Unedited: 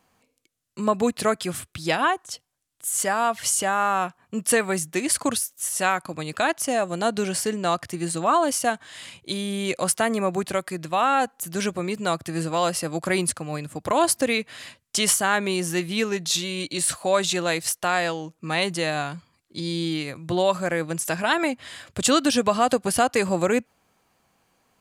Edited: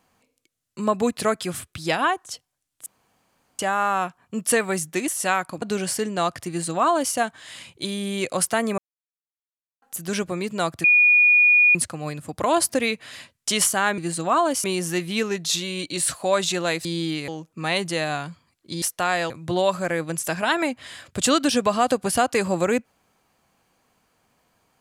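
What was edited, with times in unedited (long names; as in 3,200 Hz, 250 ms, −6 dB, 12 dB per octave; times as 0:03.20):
0:02.86–0:03.59: fill with room tone
0:05.08–0:05.64: remove
0:06.18–0:07.09: remove
0:07.95–0:08.61: duplicate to 0:15.45
0:10.25–0:11.29: silence
0:12.31–0:13.22: beep over 2,450 Hz −12 dBFS
0:17.66–0:18.14: swap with 0:19.68–0:20.11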